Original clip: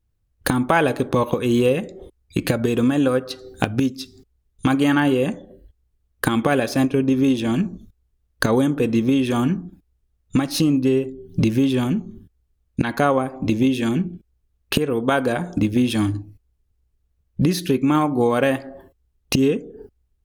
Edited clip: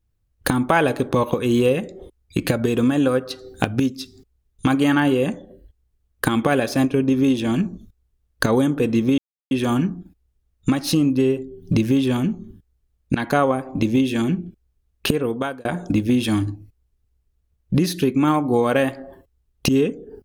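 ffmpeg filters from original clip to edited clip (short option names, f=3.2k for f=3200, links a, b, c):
-filter_complex "[0:a]asplit=3[a][b][c];[a]atrim=end=9.18,asetpts=PTS-STARTPTS,afade=t=out:st=9.176:d=0.004:c=hsin,apad=pad_dur=0.33[d];[b]atrim=start=9.18:end=15.32,asetpts=PTS-STARTPTS,afade=t=in:d=0.004:c=hsin,afade=t=out:st=5.72:d=0.42[e];[c]atrim=start=15.32,asetpts=PTS-STARTPTS,afade=t=in:d=0.004:c=hsin[f];[d][e][f]concat=n=3:v=0:a=1"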